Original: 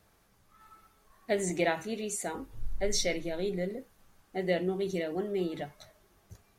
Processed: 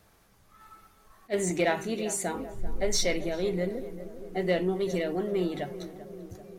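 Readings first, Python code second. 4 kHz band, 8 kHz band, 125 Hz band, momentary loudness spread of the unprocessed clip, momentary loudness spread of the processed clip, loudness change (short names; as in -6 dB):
+2.5 dB, +3.0 dB, +3.5 dB, 12 LU, 14 LU, +2.5 dB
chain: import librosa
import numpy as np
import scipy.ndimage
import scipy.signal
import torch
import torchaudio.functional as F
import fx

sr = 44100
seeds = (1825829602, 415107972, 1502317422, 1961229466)

p1 = 10.0 ** (-28.5 / 20.0) * np.tanh(x / 10.0 ** (-28.5 / 20.0))
p2 = x + (p1 * librosa.db_to_amplitude(-4.0))
p3 = fx.echo_filtered(p2, sr, ms=390, feedback_pct=71, hz=1100.0, wet_db=-12.5)
y = fx.attack_slew(p3, sr, db_per_s=500.0)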